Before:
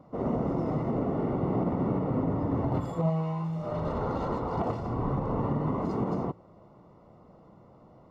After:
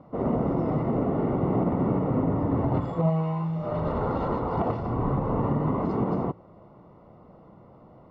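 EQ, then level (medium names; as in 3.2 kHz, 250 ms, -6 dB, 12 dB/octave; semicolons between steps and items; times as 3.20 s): low-pass 3.4 kHz 12 dB/octave; +3.5 dB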